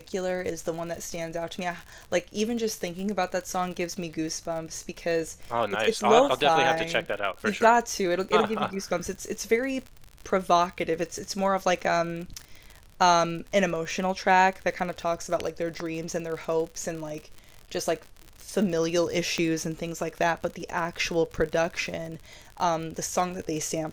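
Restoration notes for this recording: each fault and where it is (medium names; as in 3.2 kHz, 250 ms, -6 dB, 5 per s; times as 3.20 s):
crackle 67 per s -33 dBFS
5.84 s: dropout 4.2 ms
19.38 s: pop -17 dBFS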